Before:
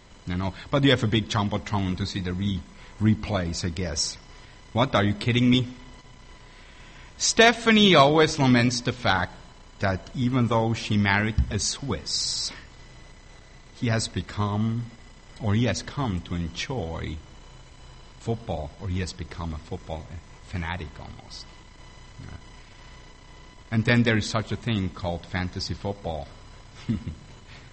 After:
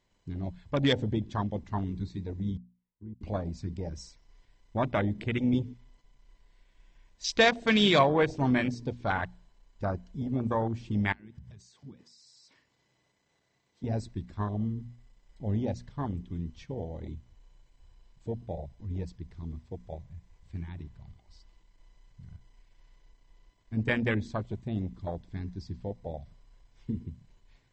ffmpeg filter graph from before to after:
ffmpeg -i in.wav -filter_complex "[0:a]asettb=1/sr,asplit=3[link_01][link_02][link_03];[link_01]atrim=end=2.574[link_04];[link_02]atrim=start=2.57:end=3.21,asetpts=PTS-STARTPTS,afade=type=in:duration=0.004:curve=qsin,afade=type=out:start_time=0.636:duration=0.004:curve=qsin,lowpass=frequency=1400:poles=1,acompressor=threshold=-38dB:ratio=3:attack=3.2:release=140:knee=1:detection=peak,agate=range=-27dB:threshold=-37dB:ratio=16:release=100:detection=peak[link_05];[link_03]atrim=start=3.206[link_06];[link_04][link_05]acrossfade=duration=0.004:curve1=hsin:curve2=qsin[link_07];[link_07][link_06]acrossfade=duration=0.004:curve1=qsin:curve2=hsin,asettb=1/sr,asplit=3[link_08][link_09][link_10];[link_08]atrim=end=11.124[link_11];[link_09]atrim=start=11.12:end=13.84,asetpts=PTS-STARTPTS,afade=type=in:duration=0.004:curve=qsin,afade=type=out:start_time=2.716:duration=0.004:curve=qsin,highpass=130,acompressor=threshold=-33dB:ratio=16:attack=3.2:release=140:knee=1:detection=peak[link_12];[link_10]atrim=start=13.836[link_13];[link_11][link_12]acrossfade=duration=0.004:curve1=hsin:curve2=qsin[link_14];[link_14][link_13]acrossfade=duration=0.004:curve1=qsin:curve2=hsin,bandreject=frequency=1300:width=8.5,afwtdn=0.0447,bandreject=frequency=60:width_type=h:width=6,bandreject=frequency=120:width_type=h:width=6,bandreject=frequency=180:width_type=h:width=6,bandreject=frequency=240:width_type=h:width=6,volume=-5.5dB" out.wav

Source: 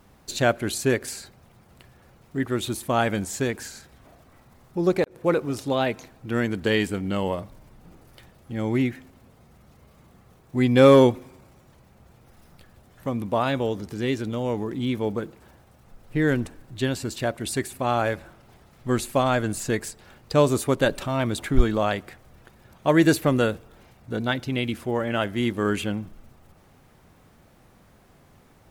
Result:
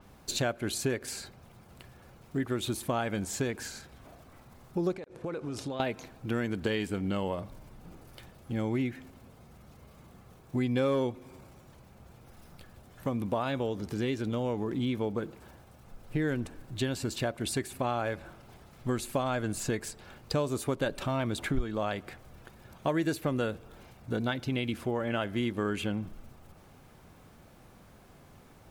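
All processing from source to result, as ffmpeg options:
ffmpeg -i in.wav -filter_complex "[0:a]asettb=1/sr,asplit=3[link_01][link_02][link_03];[link_01]atrim=end=4.934[link_04];[link_02]atrim=start=4.93:end=5.8,asetpts=PTS-STARTPTS,afade=type=in:duration=0.004:curve=qsin,afade=type=out:start_time=0.866:duration=0.004:curve=qsin,lowpass=8900,acompressor=threshold=-32dB:ratio=10:attack=3.2:release=140:knee=1:detection=peak[link_05];[link_03]atrim=start=5.796[link_06];[link_04][link_05]acrossfade=duration=0.004:curve1=hsin:curve2=qsin[link_07];[link_07][link_06]acrossfade=duration=0.004:curve1=qsin:curve2=hsin,bandreject=frequency=1900:width=20,acompressor=threshold=-28dB:ratio=4,adynamicequalizer=threshold=0.00224:dfrequency=5500:dqfactor=0.7:tfrequency=5500:tqfactor=0.7:attack=5:release=100:ratio=0.375:range=2:mode=cutabove:tftype=highshelf" out.wav

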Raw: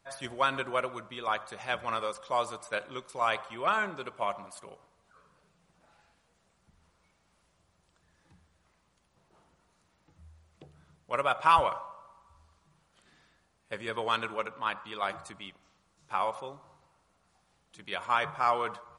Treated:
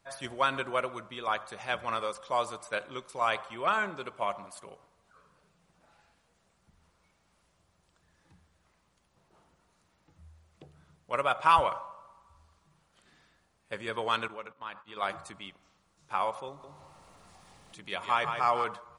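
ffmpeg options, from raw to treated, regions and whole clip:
ffmpeg -i in.wav -filter_complex "[0:a]asettb=1/sr,asplit=3[link_01][link_02][link_03];[link_01]atrim=end=14.284[link_04];[link_02]atrim=start=14.28:end=14.97,asetpts=PTS-STARTPTS,afade=type=in:duration=0.004:curve=qsin,afade=type=out:start_time=0.686:duration=0.004:curve=qsin,lowpass=7600,agate=range=-16dB:threshold=-46dB:ratio=16:release=100:detection=peak,acompressor=threshold=-51dB:ratio=1.5:attack=3.2:release=140:knee=1:detection=peak[link_05];[link_03]atrim=start=14.966[link_06];[link_04][link_05]acrossfade=duration=0.004:curve1=hsin:curve2=qsin[link_07];[link_07][link_06]acrossfade=duration=0.004:curve1=qsin:curve2=hsin,asettb=1/sr,asplit=3[link_08][link_09][link_10];[link_08]atrim=end=16.484[link_11];[link_09]atrim=start=16.48:end=18.64,asetpts=PTS-STARTPTS,afade=type=in:duration=0.004:curve=qsin,afade=type=out:start_time=2.156:duration=0.004:curve=qsin,bandreject=frequency=1500:width=10,aecho=1:1:157:0.447,atrim=end_sample=95256,acompressor=mode=upward:threshold=-43dB:ratio=2.5:attack=3.2:release=140:knee=2.83:detection=peak[link_12];[link_10]atrim=start=18.636[link_13];[link_11][link_12]acrossfade=duration=0.004:curve1=hsin:curve2=qsin[link_14];[link_14][link_13]acrossfade=duration=0.004:curve1=qsin:curve2=hsin" out.wav

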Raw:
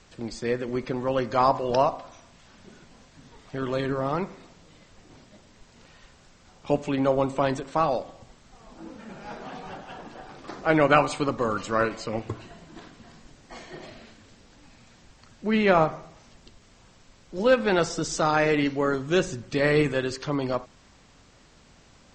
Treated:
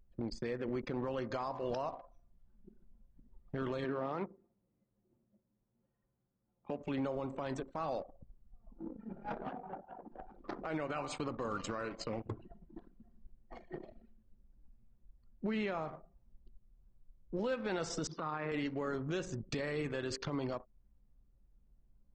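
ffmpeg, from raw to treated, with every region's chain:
ffmpeg -i in.wav -filter_complex "[0:a]asettb=1/sr,asplit=3[link_01][link_02][link_03];[link_01]atrim=end=3.844[link_04];[link_02]atrim=start=3.84:end=6.79,asetpts=PTS-STARTPTS,afade=type=in:duration=0.004:curve=qsin,afade=type=out:start_time=2.946:duration=0.004:curve=qsin,adynamicsmooth=sensitivity=7.5:basefreq=2800,highpass=170,lowpass=4800[link_05];[link_03]atrim=start=6.786[link_06];[link_04][link_05]acrossfade=duration=0.004:curve1=hsin:curve2=qsin[link_07];[link_07][link_06]acrossfade=duration=0.004:curve1=qsin:curve2=hsin,asettb=1/sr,asplit=3[link_08][link_09][link_10];[link_08]atrim=end=9.524[link_11];[link_09]atrim=start=9.52:end=10.12,asetpts=PTS-STARTPTS,afade=type=in:duration=0.004:curve=qsin,afade=type=out:start_time=0.596:duration=0.004:curve=qsin,highpass=frequency=170:poles=1,equalizer=frequency=6400:width=0.39:gain=-10.5[link_12];[link_10]atrim=start=10.116[link_13];[link_11][link_12]acrossfade=duration=0.004:curve1=hsin:curve2=qsin[link_14];[link_14][link_13]acrossfade=duration=0.004:curve1=qsin:curve2=hsin,asettb=1/sr,asplit=3[link_15][link_16][link_17];[link_15]atrim=end=18.074[link_18];[link_16]atrim=start=18.07:end=18.52,asetpts=PTS-STARTPTS,afade=type=in:duration=0.004:curve=qsin,afade=type=out:start_time=0.446:duration=0.004:curve=qsin,highpass=frequency=130:width=0.5412,highpass=frequency=130:width=1.3066,equalizer=frequency=150:width_type=q:width=4:gain=5,equalizer=frequency=650:width_type=q:width=4:gain=-4,equalizer=frequency=1100:width_type=q:width=4:gain=9,lowpass=frequency=4000:width=0.5412,lowpass=frequency=4000:width=1.3066,acompressor=threshold=-31dB:ratio=8:attack=3.2:release=140:knee=1:detection=peak[link_19];[link_17]atrim=start=18.516[link_20];[link_18][link_19]acrossfade=duration=0.004:curve1=hsin:curve2=qsin[link_21];[link_21][link_20]acrossfade=duration=0.004:curve1=qsin:curve2=hsin,anlmdn=2.51,acompressor=threshold=-31dB:ratio=8,alimiter=level_in=4dB:limit=-24dB:level=0:latency=1:release=37,volume=-4dB" out.wav

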